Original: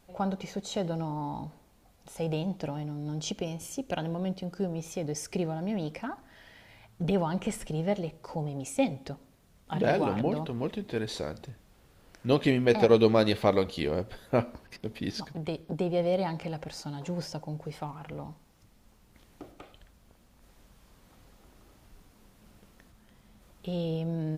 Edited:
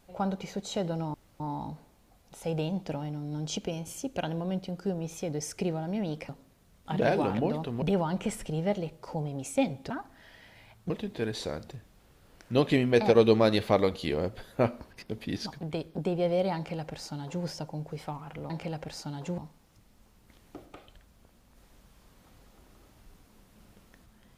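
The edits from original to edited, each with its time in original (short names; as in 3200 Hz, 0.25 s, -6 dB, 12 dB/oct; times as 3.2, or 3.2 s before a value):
1.14 insert room tone 0.26 s
6.03–7.03 swap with 9.11–10.64
16.3–17.18 copy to 18.24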